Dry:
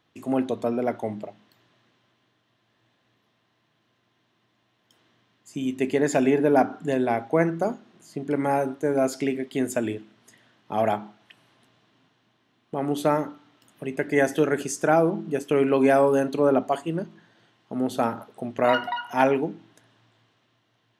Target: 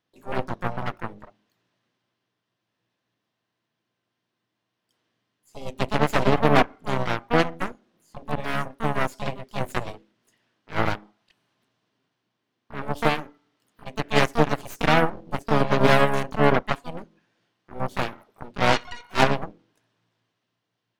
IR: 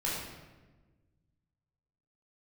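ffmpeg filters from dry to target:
-filter_complex "[0:a]aeval=exprs='0.562*(cos(1*acos(clip(val(0)/0.562,-1,1)))-cos(1*PI/2))+0.0316*(cos(4*acos(clip(val(0)/0.562,-1,1)))-cos(4*PI/2))+0.112*(cos(6*acos(clip(val(0)/0.562,-1,1)))-cos(6*PI/2))+0.1*(cos(7*acos(clip(val(0)/0.562,-1,1)))-cos(7*PI/2))':c=same,asplit=2[a][b];[b]asetrate=66075,aresample=44100,atempo=0.66742,volume=-5dB[c];[a][c]amix=inputs=2:normalize=0"

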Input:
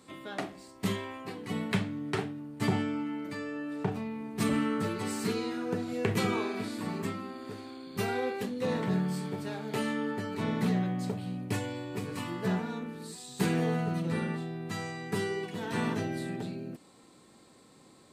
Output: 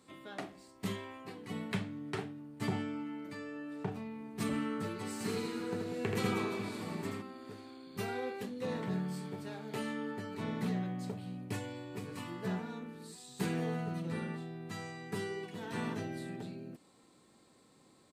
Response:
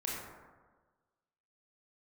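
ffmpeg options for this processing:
-filter_complex "[0:a]asplit=3[a][b][c];[a]afade=t=out:st=5.19:d=0.02[d];[b]aecho=1:1:80|192|348.8|568.3|875.6:0.631|0.398|0.251|0.158|0.1,afade=t=in:st=5.19:d=0.02,afade=t=out:st=7.21:d=0.02[e];[c]afade=t=in:st=7.21:d=0.02[f];[d][e][f]amix=inputs=3:normalize=0,volume=-6.5dB"

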